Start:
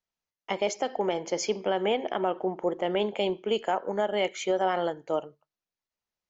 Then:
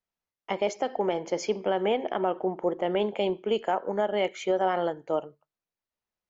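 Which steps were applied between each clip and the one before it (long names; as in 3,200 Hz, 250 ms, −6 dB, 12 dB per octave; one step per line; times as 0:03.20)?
high-shelf EQ 3,400 Hz −8.5 dB
level +1 dB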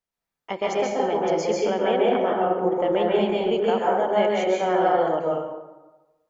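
dense smooth reverb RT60 1.1 s, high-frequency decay 0.55×, pre-delay 120 ms, DRR −4.5 dB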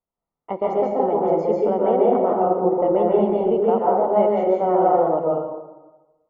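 Savitzky-Golay smoothing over 65 samples
level +3.5 dB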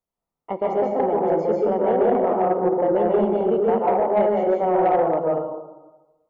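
soft clipping −10 dBFS, distortion −20 dB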